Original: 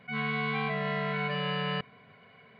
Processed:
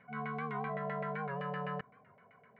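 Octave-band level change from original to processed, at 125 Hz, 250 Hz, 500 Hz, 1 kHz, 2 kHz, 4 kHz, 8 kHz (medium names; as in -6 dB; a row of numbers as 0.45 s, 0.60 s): -8.0 dB, -7.5 dB, -5.5 dB, -4.0 dB, -11.0 dB, -22.5 dB, no reading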